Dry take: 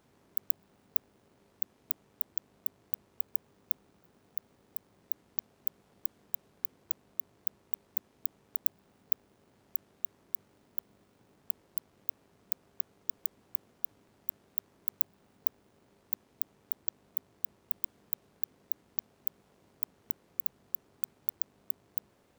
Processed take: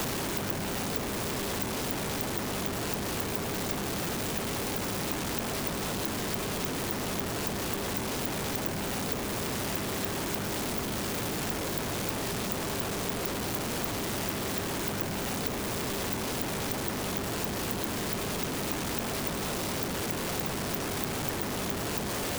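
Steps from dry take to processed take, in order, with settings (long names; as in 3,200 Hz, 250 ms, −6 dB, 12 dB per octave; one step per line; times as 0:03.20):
converter with a step at zero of −22 dBFS
multiband upward and downward compressor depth 70%
level −5 dB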